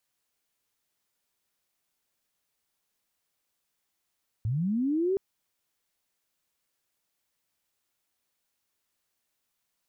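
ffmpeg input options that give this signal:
ffmpeg -f lavfi -i "aevalsrc='pow(10,(-25.5+2.5*t/0.72)/20)*sin(2*PI*(100*t+300*t*t/(2*0.72)))':duration=0.72:sample_rate=44100" out.wav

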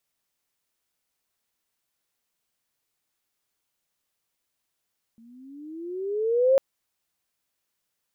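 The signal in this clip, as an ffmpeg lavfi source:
ffmpeg -f lavfi -i "aevalsrc='pow(10,(-14+35*(t/1.4-1))/20)*sin(2*PI*224*1.4/(15.5*log(2)/12)*(exp(15.5*log(2)/12*t/1.4)-1))':duration=1.4:sample_rate=44100" out.wav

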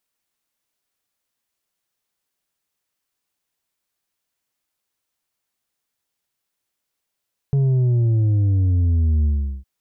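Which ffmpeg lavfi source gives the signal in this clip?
ffmpeg -f lavfi -i "aevalsrc='0.178*clip((2.11-t)/0.39,0,1)*tanh(1.78*sin(2*PI*140*2.11/log(65/140)*(exp(log(65/140)*t/2.11)-1)))/tanh(1.78)':duration=2.11:sample_rate=44100" out.wav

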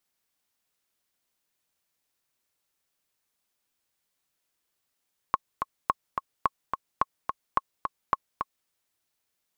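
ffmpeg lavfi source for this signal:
ffmpeg -f lavfi -i "aevalsrc='pow(10,(-8.5-6*gte(mod(t,2*60/215),60/215))/20)*sin(2*PI*1090*mod(t,60/215))*exp(-6.91*mod(t,60/215)/0.03)':duration=3.34:sample_rate=44100" out.wav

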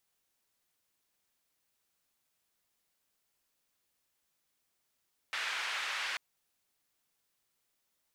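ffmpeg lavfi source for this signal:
ffmpeg -f lavfi -i "anoisesrc=color=white:duration=0.84:sample_rate=44100:seed=1,highpass=frequency=1500,lowpass=frequency=2200,volume=-18.1dB" out.wav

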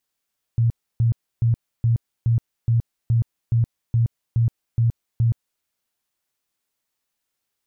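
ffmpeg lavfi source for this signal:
ffmpeg -f lavfi -i "aevalsrc='0.188*sin(2*PI*116*mod(t,0.42))*lt(mod(t,0.42),14/116)':duration=5.04:sample_rate=44100" out.wav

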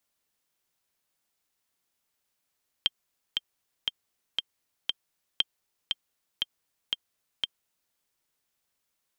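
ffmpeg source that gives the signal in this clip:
ffmpeg -f lavfi -i "aevalsrc='pow(10,(-9.5-4*gte(mod(t,5*60/118),60/118))/20)*sin(2*PI*3170*mod(t,60/118))*exp(-6.91*mod(t,60/118)/0.03)':duration=5.08:sample_rate=44100" out.wav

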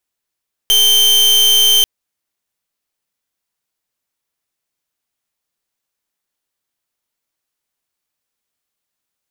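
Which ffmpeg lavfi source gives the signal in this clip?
ffmpeg -f lavfi -i "aevalsrc='0.299*(2*lt(mod(3120*t,1),0.4)-1)':duration=1.14:sample_rate=44100" out.wav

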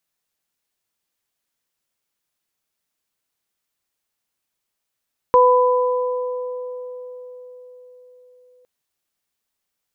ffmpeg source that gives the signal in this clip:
ffmpeg -f lavfi -i "aevalsrc='0.282*pow(10,-3*t/4.92)*sin(2*PI*499*t)+0.299*pow(10,-3*t/2.54)*sin(2*PI*998*t)':duration=3.31:sample_rate=44100" out.wav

